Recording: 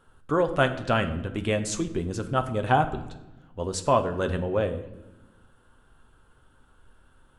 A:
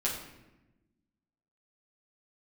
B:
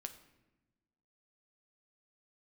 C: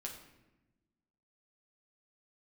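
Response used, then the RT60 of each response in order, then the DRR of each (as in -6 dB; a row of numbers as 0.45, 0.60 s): B; 1.0, 1.1, 1.0 s; -6.5, 6.5, -1.5 dB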